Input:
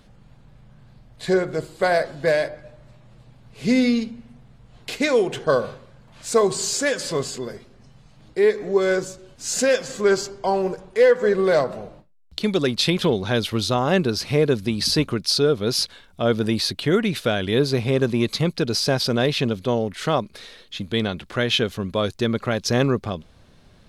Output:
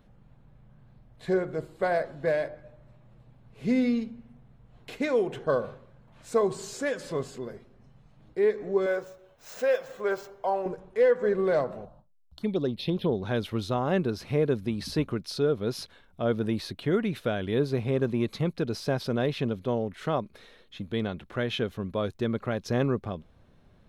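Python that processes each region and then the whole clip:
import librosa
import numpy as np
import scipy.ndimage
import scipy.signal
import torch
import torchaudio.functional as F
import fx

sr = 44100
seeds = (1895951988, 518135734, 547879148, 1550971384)

y = fx.chain(x, sr, fx.median_filter(points=5),
    fx.low_shelf_res(hz=400.0, db=-9.5, q=1.5),
    fx.notch(hz=4600.0, q=13.0), at=(8.86, 10.66))
y = fx.chain(y, sr, fx.peak_eq(hz=6500.0, db=-3.0, octaves=0.84),
    fx.env_phaser(low_hz=330.0, high_hz=2500.0, full_db=-15.5), at=(11.85, 13.22))
y = fx.peak_eq(y, sr, hz=6900.0, db=-11.0, octaves=2.6)
y = fx.notch(y, sr, hz=4700.0, q=17.0)
y = y * librosa.db_to_amplitude(-6.0)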